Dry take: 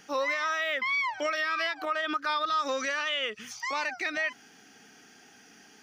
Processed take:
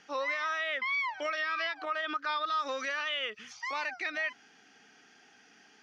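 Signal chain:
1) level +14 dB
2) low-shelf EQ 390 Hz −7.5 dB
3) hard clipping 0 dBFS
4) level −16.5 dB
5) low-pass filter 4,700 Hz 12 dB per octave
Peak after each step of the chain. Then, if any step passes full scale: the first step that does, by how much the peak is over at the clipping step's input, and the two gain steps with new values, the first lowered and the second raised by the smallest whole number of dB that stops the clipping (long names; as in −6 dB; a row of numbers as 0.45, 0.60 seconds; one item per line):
−5.0, −5.5, −5.5, −22.0, −22.5 dBFS
no step passes full scale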